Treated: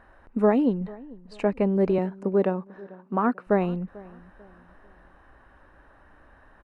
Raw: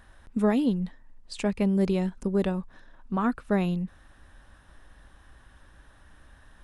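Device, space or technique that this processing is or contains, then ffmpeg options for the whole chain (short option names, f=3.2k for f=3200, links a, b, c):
through cloth: -filter_complex "[0:a]bandreject=f=3.4k:w=7.2,asettb=1/sr,asplit=3[a][b][c];[a]atrim=end=1.984[d];[b]atrim=start=1.98:end=3.47,asetpts=PTS-STARTPTS,afade=t=in:d=0.004:c=qsin,afade=t=out:st=1.486:d=0.004:c=qsin,highpass=f=140:w=0.5412,highpass=f=140:w=1.3066[e];[c]atrim=start=3.466[f];[d][e]acrossfade=d=0.004:c1=hsin:c2=qsin[g];[g][f]acrossfade=d=0.004:c1=qsin:c2=hsin,bass=f=250:g=-12,treble=f=4k:g=-10,highshelf=f=2k:g=-15,asplit=2[h][i];[i]adelay=443,lowpass=f=1.5k:p=1,volume=-21dB,asplit=2[j][k];[k]adelay=443,lowpass=f=1.5k:p=1,volume=0.39,asplit=2[l][m];[m]adelay=443,lowpass=f=1.5k:p=1,volume=0.39[n];[h][j][l][n]amix=inputs=4:normalize=0,volume=8dB"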